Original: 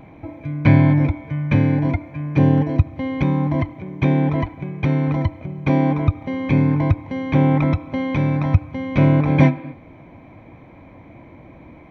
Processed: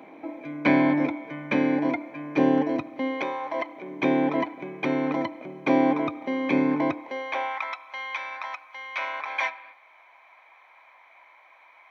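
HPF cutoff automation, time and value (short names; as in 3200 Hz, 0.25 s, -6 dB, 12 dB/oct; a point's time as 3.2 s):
HPF 24 dB/oct
3.06 s 270 Hz
3.4 s 620 Hz
3.91 s 270 Hz
6.91 s 270 Hz
7.55 s 940 Hz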